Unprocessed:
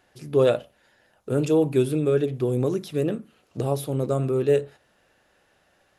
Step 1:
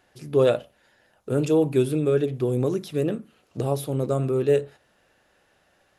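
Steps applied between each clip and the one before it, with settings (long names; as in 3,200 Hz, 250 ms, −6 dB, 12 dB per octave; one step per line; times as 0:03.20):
no processing that can be heard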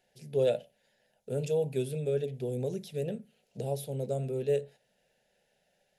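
phaser with its sweep stopped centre 310 Hz, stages 6
level −6.5 dB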